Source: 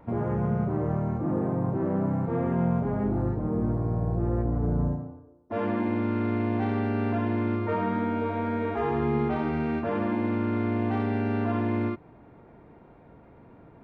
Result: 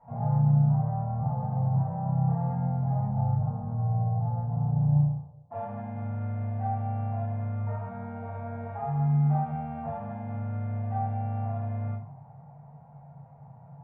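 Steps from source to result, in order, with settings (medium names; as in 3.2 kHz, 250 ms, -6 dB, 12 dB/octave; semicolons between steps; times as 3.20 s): peak limiter -23.5 dBFS, peak gain reduction 8.5 dB; two resonant band-passes 330 Hz, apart 2.5 oct; simulated room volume 30 m³, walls mixed, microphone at 1.7 m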